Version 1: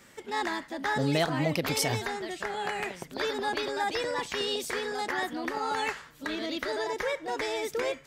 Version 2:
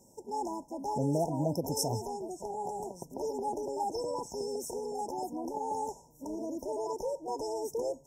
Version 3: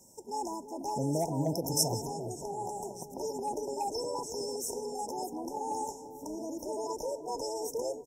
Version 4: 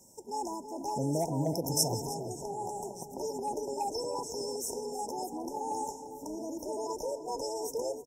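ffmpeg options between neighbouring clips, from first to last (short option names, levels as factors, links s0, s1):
-af "afftfilt=real='re*(1-between(b*sr/4096,1000,5200))':imag='im*(1-between(b*sr/4096,1000,5200))':win_size=4096:overlap=0.75,volume=0.75"
-filter_complex "[0:a]acrossover=split=770|1300[s0][s1][s2];[s0]aecho=1:1:342|684|1026|1368:0.473|0.175|0.0648|0.024[s3];[s1]volume=56.2,asoftclip=hard,volume=0.0178[s4];[s2]acontrast=82[s5];[s3][s4][s5]amix=inputs=3:normalize=0,volume=0.841"
-af "aecho=1:1:312:0.158"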